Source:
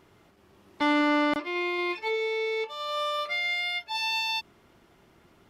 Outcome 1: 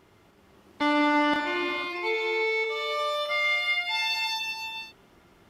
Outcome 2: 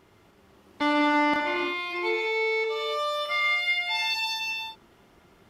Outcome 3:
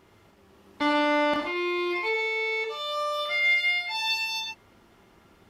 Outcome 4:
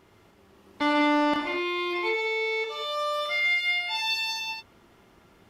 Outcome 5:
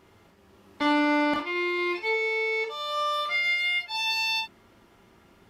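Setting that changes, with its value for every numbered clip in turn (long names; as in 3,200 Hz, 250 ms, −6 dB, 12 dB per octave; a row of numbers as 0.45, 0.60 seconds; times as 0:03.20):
reverb whose tail is shaped and stops, gate: 530, 360, 150, 230, 80 milliseconds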